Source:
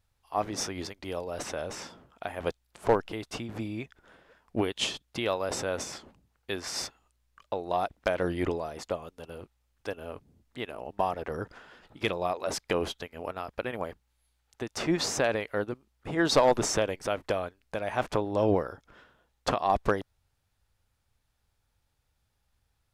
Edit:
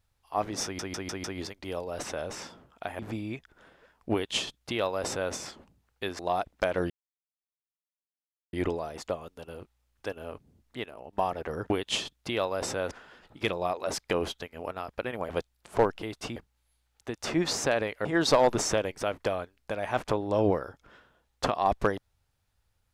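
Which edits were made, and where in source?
0.64 stutter 0.15 s, 5 plays
2.39–3.46 move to 13.89
4.59–5.8 copy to 11.51
6.66–7.63 cut
8.34 insert silence 1.63 s
10.67–10.94 gain -5.5 dB
15.58–16.09 cut

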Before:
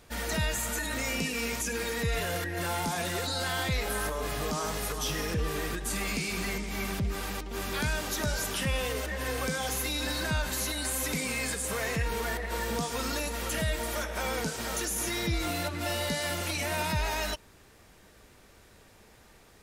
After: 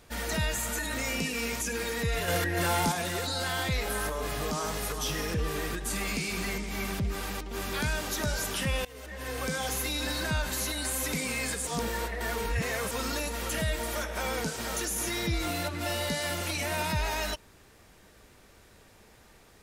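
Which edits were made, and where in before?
2.28–2.92 gain +4.5 dB
8.85–9.55 fade in, from -21.5 dB
11.67–12.91 reverse

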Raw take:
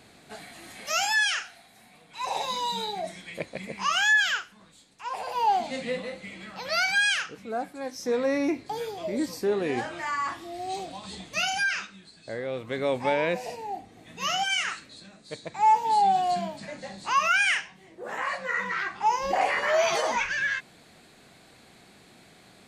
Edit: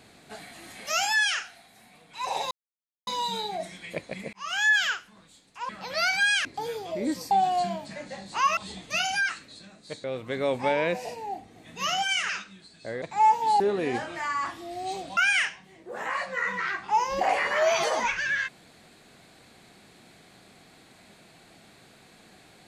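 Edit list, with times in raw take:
2.51 insert silence 0.56 s
3.77–4.16 fade in
5.13–6.44 cut
7.2–8.57 cut
9.43–11 swap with 16.03–17.29
11.72–12.45 swap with 14.7–15.45

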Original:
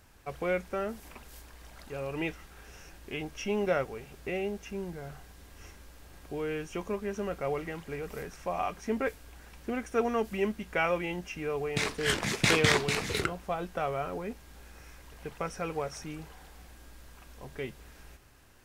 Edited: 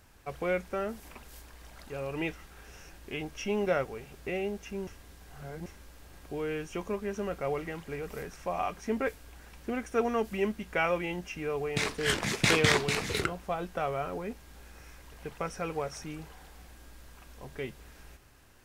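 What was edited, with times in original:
4.87–5.66 reverse

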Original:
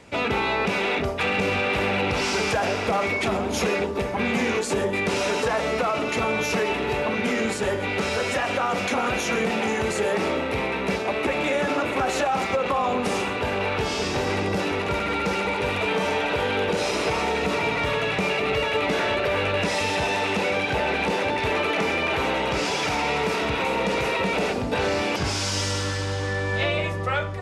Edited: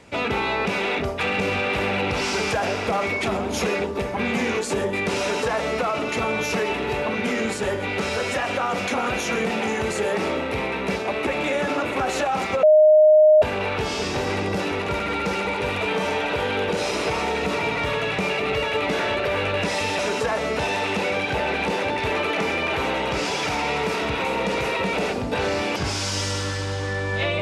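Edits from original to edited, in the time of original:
5.21–5.81 copy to 19.99
12.63–13.42 bleep 616 Hz -9.5 dBFS

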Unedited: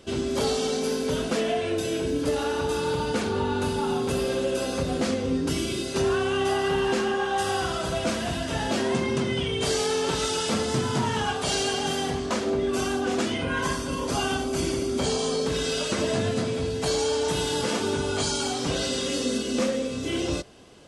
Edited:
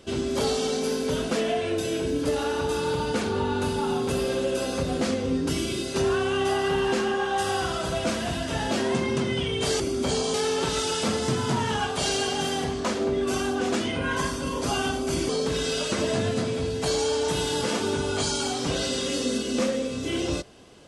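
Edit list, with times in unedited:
14.75–15.29 move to 9.8

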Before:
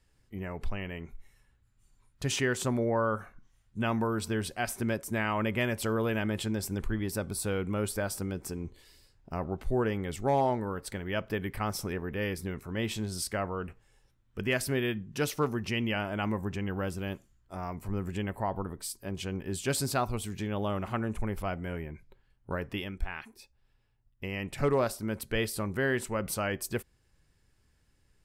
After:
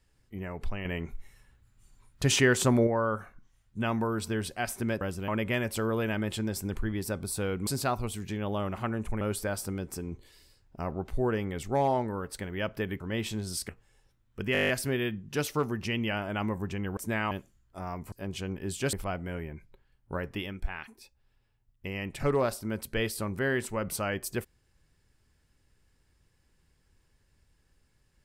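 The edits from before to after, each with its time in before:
0.85–2.87 gain +6 dB
5.01–5.35 swap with 16.8–17.07
11.53–12.65 cut
13.34–13.68 cut
14.52 stutter 0.02 s, 9 plays
17.88–18.96 cut
19.77–21.31 move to 7.74

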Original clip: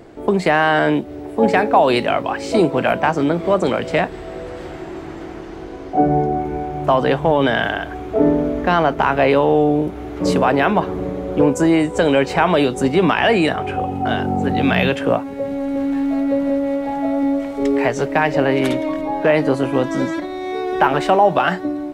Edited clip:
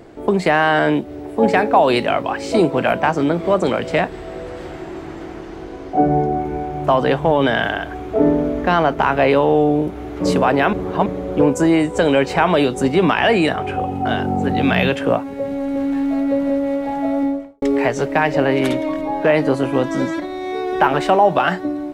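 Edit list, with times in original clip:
10.73–11.06 reverse
17.17–17.62 studio fade out

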